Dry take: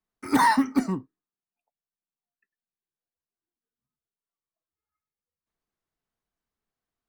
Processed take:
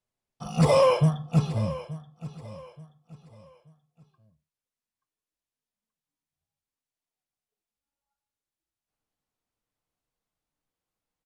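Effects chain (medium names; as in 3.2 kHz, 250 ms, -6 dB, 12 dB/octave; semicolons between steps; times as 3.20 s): gliding tape speed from 56% -> 70%; on a send: feedback delay 879 ms, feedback 32%, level -16 dB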